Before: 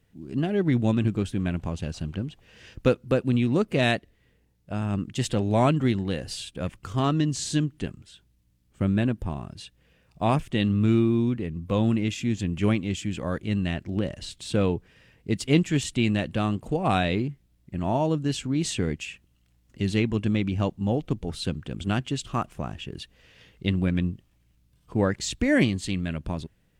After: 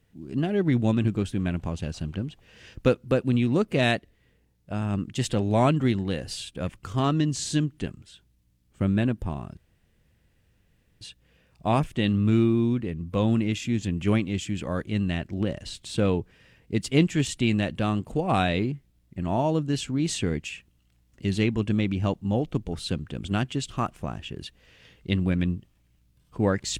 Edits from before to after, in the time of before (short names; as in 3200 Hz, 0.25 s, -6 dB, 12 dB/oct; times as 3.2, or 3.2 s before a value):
9.57 insert room tone 1.44 s